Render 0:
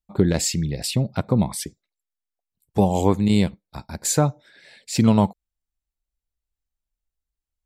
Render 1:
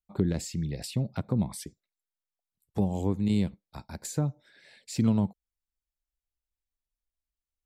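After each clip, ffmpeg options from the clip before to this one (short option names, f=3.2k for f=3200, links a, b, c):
-filter_complex "[0:a]acrossover=split=370[a][b];[b]acompressor=threshold=-30dB:ratio=6[c];[a][c]amix=inputs=2:normalize=0,volume=-7dB"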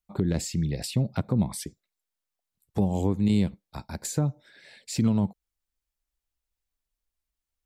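-af "alimiter=limit=-18.5dB:level=0:latency=1:release=169,volume=4.5dB"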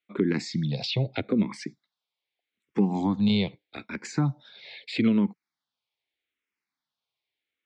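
-filter_complex "[0:a]highpass=f=140:w=0.5412,highpass=f=140:w=1.3066,equalizer=f=170:t=q:w=4:g=-8,equalizer=f=590:t=q:w=4:g=-5,equalizer=f=2.2k:t=q:w=4:g=8,equalizer=f=3.5k:t=q:w=4:g=5,lowpass=f=4.7k:w=0.5412,lowpass=f=4.7k:w=1.3066,asplit=2[a][b];[b]afreqshift=-0.8[c];[a][c]amix=inputs=2:normalize=1,volume=7dB"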